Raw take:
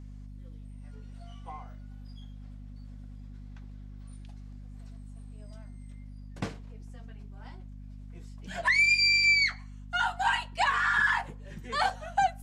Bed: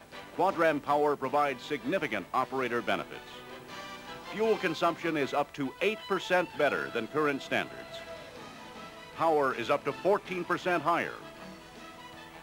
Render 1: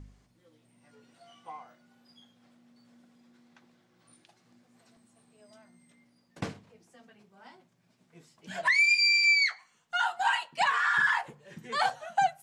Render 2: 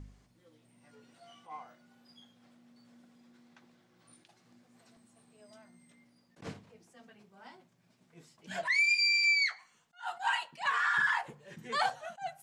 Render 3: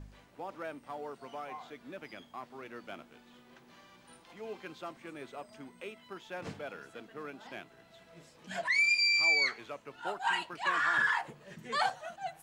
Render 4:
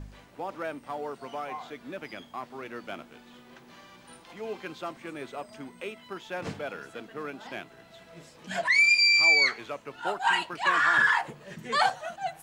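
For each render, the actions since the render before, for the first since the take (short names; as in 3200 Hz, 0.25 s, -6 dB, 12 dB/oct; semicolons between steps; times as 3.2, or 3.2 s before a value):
de-hum 50 Hz, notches 5
compressor 1.5:1, threshold -31 dBFS, peak gain reduction 4.5 dB; attack slew limiter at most 230 dB/s
add bed -15.5 dB
gain +6.5 dB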